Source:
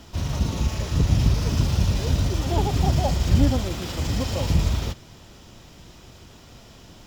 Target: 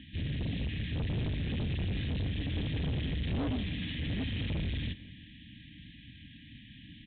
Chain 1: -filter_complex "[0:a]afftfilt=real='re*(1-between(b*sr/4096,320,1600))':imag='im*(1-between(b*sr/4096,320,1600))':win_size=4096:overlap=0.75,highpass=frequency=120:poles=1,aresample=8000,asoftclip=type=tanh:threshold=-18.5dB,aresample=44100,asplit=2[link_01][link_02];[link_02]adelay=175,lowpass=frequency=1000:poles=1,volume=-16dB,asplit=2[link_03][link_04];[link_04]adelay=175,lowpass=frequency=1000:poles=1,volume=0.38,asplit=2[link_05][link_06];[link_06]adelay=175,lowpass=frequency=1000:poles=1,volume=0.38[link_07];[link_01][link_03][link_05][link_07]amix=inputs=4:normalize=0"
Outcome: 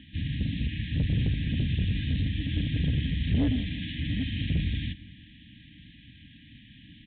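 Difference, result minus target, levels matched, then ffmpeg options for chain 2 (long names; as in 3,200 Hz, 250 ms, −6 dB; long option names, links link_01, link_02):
soft clipping: distortion −9 dB
-filter_complex "[0:a]afftfilt=real='re*(1-between(b*sr/4096,320,1600))':imag='im*(1-between(b*sr/4096,320,1600))':win_size=4096:overlap=0.75,highpass=frequency=120:poles=1,aresample=8000,asoftclip=type=tanh:threshold=-30dB,aresample=44100,asplit=2[link_01][link_02];[link_02]adelay=175,lowpass=frequency=1000:poles=1,volume=-16dB,asplit=2[link_03][link_04];[link_04]adelay=175,lowpass=frequency=1000:poles=1,volume=0.38,asplit=2[link_05][link_06];[link_06]adelay=175,lowpass=frequency=1000:poles=1,volume=0.38[link_07];[link_01][link_03][link_05][link_07]amix=inputs=4:normalize=0"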